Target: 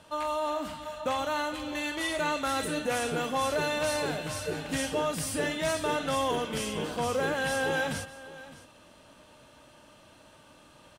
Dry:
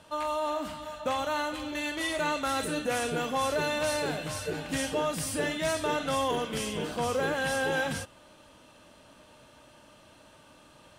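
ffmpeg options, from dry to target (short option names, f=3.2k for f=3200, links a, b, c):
-af "aecho=1:1:612:0.133"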